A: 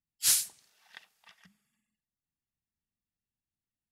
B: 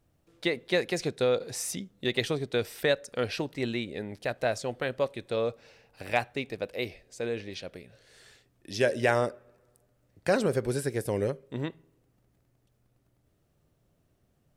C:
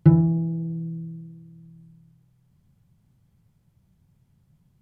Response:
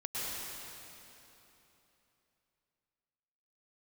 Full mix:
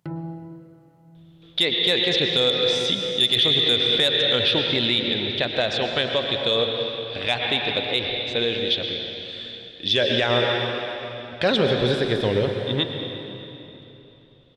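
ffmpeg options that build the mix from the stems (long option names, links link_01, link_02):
-filter_complex "[1:a]lowpass=frequency=3500:width_type=q:width=14,adelay=1150,volume=-2.5dB,asplit=2[link_01][link_02];[link_02]volume=-6dB[link_03];[2:a]highpass=frequency=720:poles=1,alimiter=level_in=1dB:limit=-24dB:level=0:latency=1:release=76,volume=-1dB,volume=-6.5dB,asplit=2[link_04][link_05];[link_05]volume=-10dB[link_06];[3:a]atrim=start_sample=2205[link_07];[link_03][link_06]amix=inputs=2:normalize=0[link_08];[link_08][link_07]afir=irnorm=-1:irlink=0[link_09];[link_01][link_04][link_09]amix=inputs=3:normalize=0,acontrast=67,alimiter=limit=-10.5dB:level=0:latency=1:release=56"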